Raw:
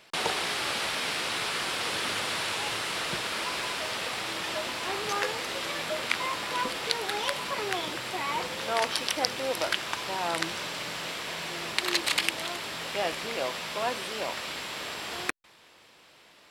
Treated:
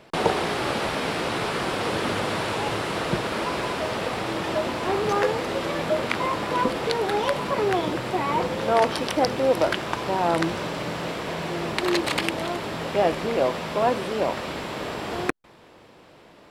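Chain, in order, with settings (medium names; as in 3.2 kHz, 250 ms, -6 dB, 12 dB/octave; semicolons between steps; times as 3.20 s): tilt shelf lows +9 dB, about 1.2 kHz; trim +5 dB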